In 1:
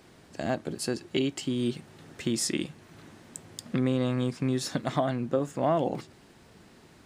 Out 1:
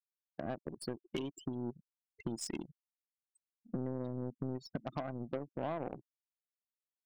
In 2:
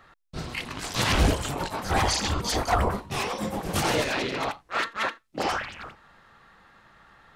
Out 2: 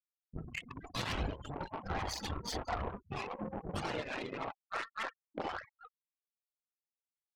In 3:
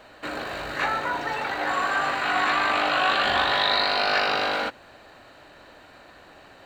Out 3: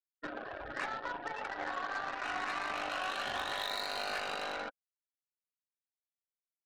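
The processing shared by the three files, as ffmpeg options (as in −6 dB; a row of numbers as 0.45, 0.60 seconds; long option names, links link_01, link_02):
-af "afftfilt=real='re*gte(hypot(re,im),0.0501)':imag='im*gte(hypot(re,im),0.0501)':win_size=1024:overlap=0.75,acompressor=threshold=-36dB:ratio=3,aeval=exprs='0.0841*(cos(1*acos(clip(val(0)/0.0841,-1,1)))-cos(1*PI/2))+0.00944*(cos(5*acos(clip(val(0)/0.0841,-1,1)))-cos(5*PI/2))+0.0133*(cos(7*acos(clip(val(0)/0.0841,-1,1)))-cos(7*PI/2))+0.000944*(cos(8*acos(clip(val(0)/0.0841,-1,1)))-cos(8*PI/2))':channel_layout=same,volume=-2.5dB"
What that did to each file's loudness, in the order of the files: −12.0, −13.5, −14.0 LU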